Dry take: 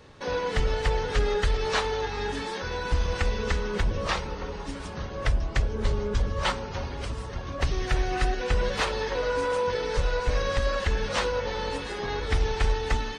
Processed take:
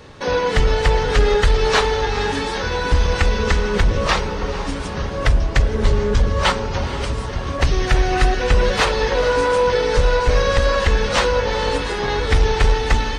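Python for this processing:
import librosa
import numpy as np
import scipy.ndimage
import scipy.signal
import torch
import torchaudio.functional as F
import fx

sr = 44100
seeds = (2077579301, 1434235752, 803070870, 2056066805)

p1 = np.clip(10.0 ** (19.5 / 20.0) * x, -1.0, 1.0) / 10.0 ** (19.5 / 20.0)
p2 = x + (p1 * librosa.db_to_amplitude(-4.5))
p3 = fx.echo_diffused(p2, sr, ms=475, feedback_pct=49, wet_db=-13)
y = p3 * librosa.db_to_amplitude(5.5)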